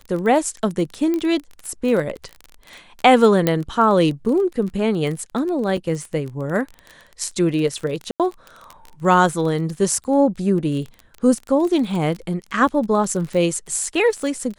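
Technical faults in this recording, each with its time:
crackle 25 per s -26 dBFS
1.14 s: pop -12 dBFS
3.47 s: pop -4 dBFS
5.77 s: dropout 4.1 ms
8.11–8.20 s: dropout 87 ms

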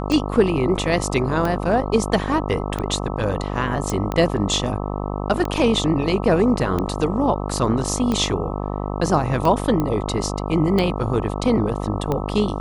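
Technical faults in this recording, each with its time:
buzz 50 Hz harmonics 26 -26 dBFS
tick 45 rpm
3.90 s: pop
9.80 s: pop -11 dBFS

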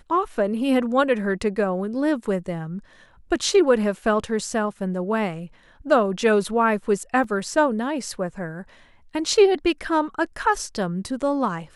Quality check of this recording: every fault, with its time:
7.24 s: dropout 2.8 ms

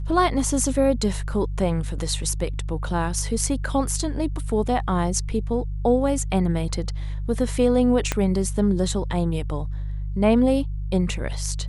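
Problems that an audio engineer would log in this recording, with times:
hum 50 Hz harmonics 3 -28 dBFS
8.12 s: pop -7 dBFS

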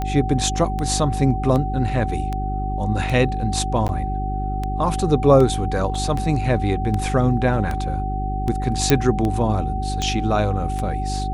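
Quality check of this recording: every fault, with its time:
hum 50 Hz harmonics 8 -25 dBFS
tick 78 rpm -13 dBFS
whine 760 Hz -27 dBFS
3.88–3.89 s: dropout 9.9 ms
5.95 s: dropout 2.5 ms
8.90 s: pop -1 dBFS

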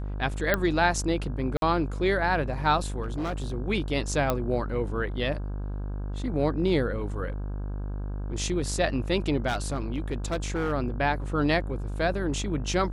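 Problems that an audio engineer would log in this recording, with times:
buzz 50 Hz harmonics 33 -32 dBFS
0.54 s: pop -9 dBFS
1.57–1.62 s: dropout 52 ms
3.02–3.55 s: clipped -26 dBFS
4.30 s: pop -11 dBFS
9.47–10.73 s: clipped -23 dBFS

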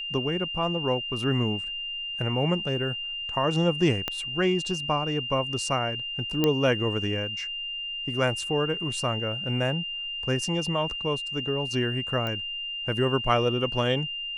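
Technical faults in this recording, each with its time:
whine 2.8 kHz -31 dBFS
4.08 s: pop -13 dBFS
6.44 s: pop -9 dBFS
12.27 s: pop -18 dBFS

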